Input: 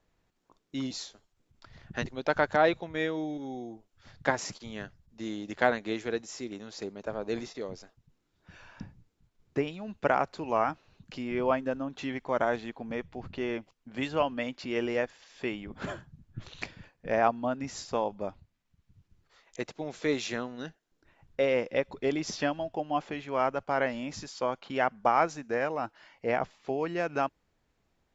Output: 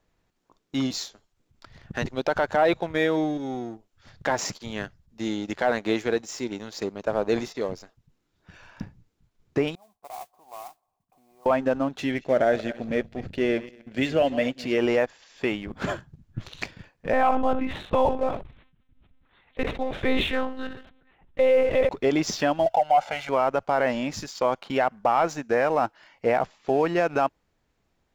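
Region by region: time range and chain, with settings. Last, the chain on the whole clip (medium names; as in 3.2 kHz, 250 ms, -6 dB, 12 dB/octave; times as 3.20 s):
9.75–11.46 s: compression 2:1, threshold -40 dBFS + cascade formant filter a + modulation noise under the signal 12 dB
12.00–14.78 s: backward echo that repeats 121 ms, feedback 43%, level -14 dB + FFT filter 650 Hz 0 dB, 1 kHz -18 dB, 1.6 kHz -1 dB
17.13–21.89 s: feedback delay 67 ms, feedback 26%, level -19 dB + monotone LPC vocoder at 8 kHz 260 Hz + decay stretcher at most 71 dB/s
22.66–23.29 s: resonant low shelf 480 Hz -10 dB, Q 1.5 + comb 1.4 ms, depth 93% + tape noise reduction on one side only encoder only
whole clip: dynamic bell 730 Hz, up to +4 dB, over -38 dBFS, Q 1; waveshaping leveller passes 1; peak limiter -16 dBFS; trim +4 dB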